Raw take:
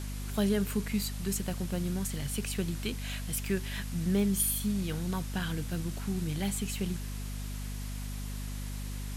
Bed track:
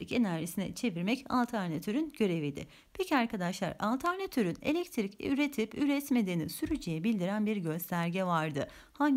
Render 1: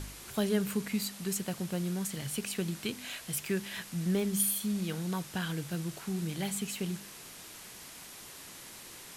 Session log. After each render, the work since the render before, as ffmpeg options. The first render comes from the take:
-af "bandreject=f=50:t=h:w=4,bandreject=f=100:t=h:w=4,bandreject=f=150:t=h:w=4,bandreject=f=200:t=h:w=4,bandreject=f=250:t=h:w=4"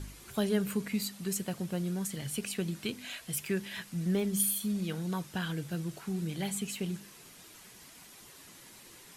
-af "afftdn=nr=7:nf=-49"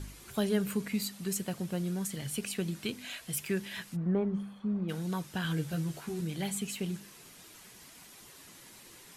-filter_complex "[0:a]asplit=3[s0][s1][s2];[s0]afade=t=out:st=3.95:d=0.02[s3];[s1]lowpass=f=1100:t=q:w=1.7,afade=t=in:st=3.95:d=0.02,afade=t=out:st=4.88:d=0.02[s4];[s2]afade=t=in:st=4.88:d=0.02[s5];[s3][s4][s5]amix=inputs=3:normalize=0,asettb=1/sr,asplit=3[s6][s7][s8];[s6]atrim=end=5.434[s9];[s7]atrim=start=5.43:end=6.21,asetpts=PTS-STARTPTS,afade=t=in:d=0.004:c=qsin,afade=t=out:st=0.776:d=0.004:c=qsin,asplit=2[s10][s11];[s11]adelay=13,volume=0.708[s12];[s10][s12]amix=inputs=2:normalize=0,atrim=end_sample=34398[s13];[s8]atrim=start=6.206[s14];[s9][s13]acrossfade=d=0.004:c1=hsin:c2=qsin[s15];[s15][s14]acrossfade=d=0.004:c1=qsin:c2=hsin"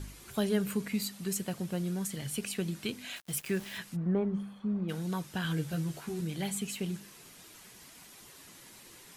-filter_complex "[0:a]asettb=1/sr,asplit=3[s0][s1][s2];[s0]atrim=end=3.164[s3];[s1]atrim=start=3.16:end=3.78,asetpts=PTS-STARTPTS,afade=t=in:d=0.004:c=qsin,afade=t=out:st=0.616:d=0.004:c=qsin,aeval=exprs='val(0)*gte(abs(val(0)),0.00631)':c=same[s4];[s2]atrim=start=3.776[s5];[s3][s4]acrossfade=d=0.004:c1=hsin:c2=qsin[s6];[s6][s5]acrossfade=d=0.004:c1=qsin:c2=hsin"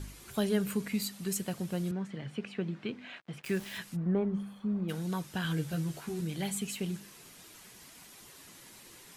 -filter_complex "[0:a]asettb=1/sr,asplit=3[s0][s1][s2];[s0]atrim=end=1.914[s3];[s1]atrim=start=1.91:end=3.44,asetpts=PTS-STARTPTS,afade=t=in:d=0.004:c=qsin,afade=t=out:st=1.526:d=0.004:c=qsin,highpass=130,lowpass=2200[s4];[s2]atrim=start=3.436[s5];[s3][s4]acrossfade=d=0.004:c1=hsin:c2=qsin[s6];[s6][s5]acrossfade=d=0.004:c1=qsin:c2=hsin,asettb=1/sr,asplit=3[s7][s8][s9];[s7]atrim=end=4.464[s10];[s8]atrim=start=4.46:end=4.92,asetpts=PTS-STARTPTS,afade=t=in:d=0.004:c=qsin,afade=t=out:st=0.456:d=0.004:c=qsin,highshelf=f=9400:g=8[s11];[s9]atrim=start=4.916[s12];[s10][s11]acrossfade=d=0.004:c1=hsin:c2=qsin[s13];[s13][s12]acrossfade=d=0.004:c1=qsin:c2=hsin"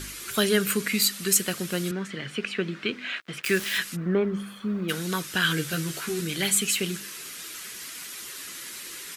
-af "firequalizer=gain_entry='entry(110,0);entry(360,9);entry(820,2);entry(1300,15)':delay=0.05:min_phase=1"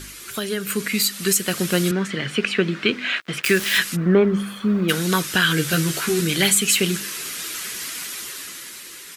-af "alimiter=limit=0.188:level=0:latency=1:release=260,dynaudnorm=f=120:g=17:m=2.82"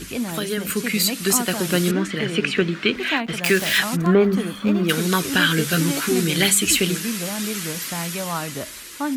-filter_complex "[1:a]volume=1.41[s0];[0:a][s0]amix=inputs=2:normalize=0"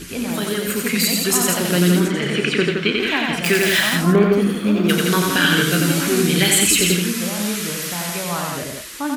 -filter_complex "[0:a]asplit=2[s0][s1];[s1]adelay=34,volume=0.299[s2];[s0][s2]amix=inputs=2:normalize=0,aecho=1:1:90.38|169.1:0.708|0.562"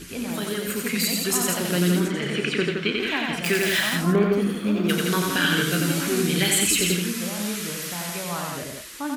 -af "volume=0.531"

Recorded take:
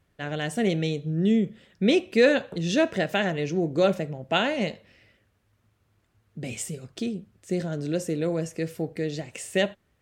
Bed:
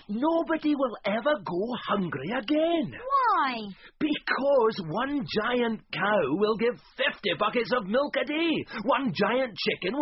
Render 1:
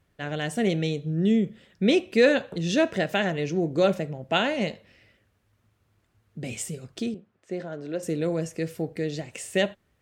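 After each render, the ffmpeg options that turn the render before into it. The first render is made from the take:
-filter_complex "[0:a]asettb=1/sr,asplit=3[s0][s1][s2];[s0]atrim=end=7.144[s3];[s1]atrim=start=7.14:end=8.03,asetpts=PTS-STARTPTS,afade=t=in:d=0.004:c=qsin,afade=t=out:st=0.886:d=0.004:c=qsin,bandpass=f=910:t=q:w=0.58[s4];[s2]atrim=start=8.026[s5];[s3][s4]acrossfade=d=0.004:c1=hsin:c2=qsin[s6];[s6][s5]acrossfade=d=0.004:c1=qsin:c2=hsin"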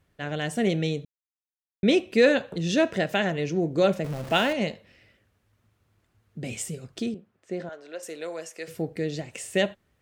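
-filter_complex "[0:a]asettb=1/sr,asplit=3[s0][s1][s2];[s0]atrim=end=4.044[s3];[s1]atrim=start=4.04:end=4.53,asetpts=PTS-STARTPTS,afade=t=in:d=0.004:c=qsin,afade=t=out:st=0.486:d=0.004:c=qsin,aeval=exprs='val(0)+0.5*0.0211*sgn(val(0))':c=same[s4];[s2]atrim=start=4.526[s5];[s3][s4]acrossfade=d=0.004:c1=hsin:c2=qsin[s6];[s6][s5]acrossfade=d=0.004:c1=qsin:c2=hsin,asettb=1/sr,asplit=3[s7][s8][s9];[s7]atrim=end=7.694[s10];[s8]atrim=start=7.69:end=8.68,asetpts=PTS-STARTPTS,afade=t=in:d=0.004:c=qsin,afade=t=out:st=0.986:d=0.004:c=qsin,highpass=670[s11];[s9]atrim=start=8.676[s12];[s10][s11]acrossfade=d=0.004:c1=hsin:c2=qsin[s13];[s13][s12]acrossfade=d=0.004:c1=qsin:c2=hsin,asplit=3[s14][s15][s16];[s14]atrim=end=1.05,asetpts=PTS-STARTPTS,afade=t=out:st=1.046:d=0.004:c=hsin[s17];[s15]atrim=start=1.05:end=1.83,asetpts=PTS-STARTPTS,volume=0[s18];[s16]atrim=start=1.83,asetpts=PTS-STARTPTS,afade=t=in:d=0.004:c=hsin[s19];[s17][s18][s19]concat=n=3:v=0:a=1"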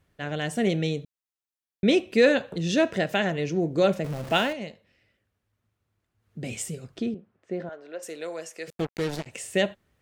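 -filter_complex "[0:a]asettb=1/sr,asplit=3[s0][s1][s2];[s0]atrim=end=6.974[s3];[s1]atrim=start=6.97:end=8.02,asetpts=PTS-STARTPTS,afade=t=in:d=0.004:c=qsin,afade=t=out:st=1.046:d=0.004:c=qsin,aemphasis=mode=reproduction:type=75fm[s4];[s2]atrim=start=8.016[s5];[s3][s4]acrossfade=d=0.004:c1=hsin:c2=qsin[s6];[s6][s5]acrossfade=d=0.004:c1=qsin:c2=hsin,asettb=1/sr,asplit=3[s7][s8][s9];[s7]atrim=end=8.704[s10];[s8]atrim=start=8.7:end=9.26,asetpts=PTS-STARTPTS,afade=t=in:d=0.004:c=qsin,afade=t=out:st=0.556:d=0.004:c=qsin,acrusher=bits=4:mix=0:aa=0.5[s11];[s9]atrim=start=9.256[s12];[s10][s11]acrossfade=d=0.004:c1=hsin:c2=qsin[s13];[s13][s12]acrossfade=d=0.004:c1=qsin:c2=hsin,asplit=3[s14][s15][s16];[s14]atrim=end=4.59,asetpts=PTS-STARTPTS,afade=t=out:st=4.32:d=0.27:c=qsin:silence=0.354813[s17];[s15]atrim=start=4.59:end=6.17,asetpts=PTS-STARTPTS,volume=0.355[s18];[s16]atrim=start=6.17,asetpts=PTS-STARTPTS,afade=t=in:d=0.27:c=qsin:silence=0.354813[s19];[s17][s18][s19]concat=n=3:v=0:a=1"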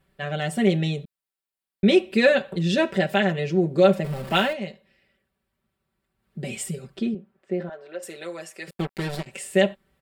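-af "equalizer=f=6200:t=o:w=0.28:g=-9.5,aecho=1:1:5.2:0.91"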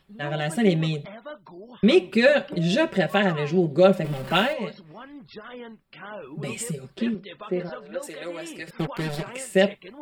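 -filter_complex "[1:a]volume=0.2[s0];[0:a][s0]amix=inputs=2:normalize=0"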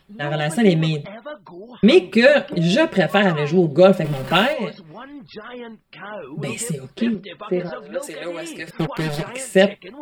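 -af "volume=1.78,alimiter=limit=0.794:level=0:latency=1"

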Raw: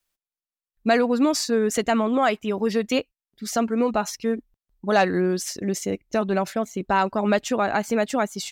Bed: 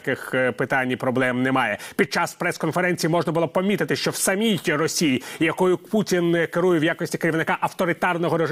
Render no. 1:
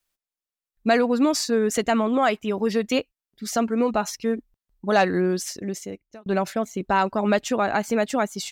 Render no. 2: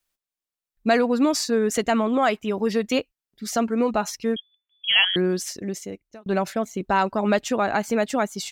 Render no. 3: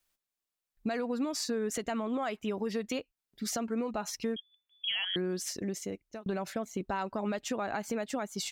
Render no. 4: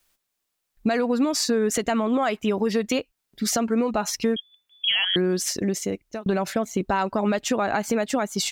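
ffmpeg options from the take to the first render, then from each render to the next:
-filter_complex "[0:a]asplit=2[s0][s1];[s0]atrim=end=6.26,asetpts=PTS-STARTPTS,afade=t=out:st=5.35:d=0.91[s2];[s1]atrim=start=6.26,asetpts=PTS-STARTPTS,afade=t=in:d=0.004:c=hsin[s3];[s2][s3]concat=n=2:v=0:a=1"
-filter_complex "[0:a]asettb=1/sr,asplit=3[s0][s1][s2];[s0]atrim=end=4.364[s3];[s1]atrim=start=4.36:end=5.16,asetpts=PTS-STARTPTS,afade=t=in:d=0.004:c=qsin,afade=t=out:st=0.796:d=0.004:c=qsin,lowpass=f=3000:t=q:w=0.5098,lowpass=f=3000:t=q:w=0.6013,lowpass=f=3000:t=q:w=0.9,lowpass=f=3000:t=q:w=2.563,afreqshift=-3500[s4];[s2]atrim=start=5.156[s5];[s3][s4]acrossfade=d=0.004:c1=hsin:c2=qsin[s6];[s6][s5]acrossfade=d=0.004:c1=qsin:c2=hsin"
-af "alimiter=limit=0.168:level=0:latency=1:release=204,acompressor=threshold=0.02:ratio=2.5"
-af "volume=3.35"

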